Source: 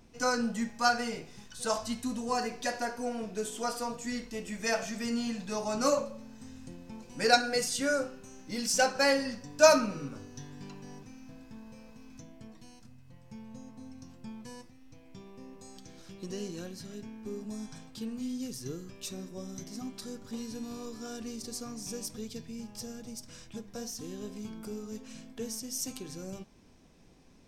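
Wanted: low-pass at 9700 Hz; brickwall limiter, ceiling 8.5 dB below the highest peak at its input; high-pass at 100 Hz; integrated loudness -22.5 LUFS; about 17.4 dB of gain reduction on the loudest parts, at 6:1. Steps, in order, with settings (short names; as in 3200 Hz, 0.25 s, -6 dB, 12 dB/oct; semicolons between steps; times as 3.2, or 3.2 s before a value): HPF 100 Hz; LPF 9700 Hz; compressor 6:1, threshold -34 dBFS; gain +19.5 dB; limiter -11.5 dBFS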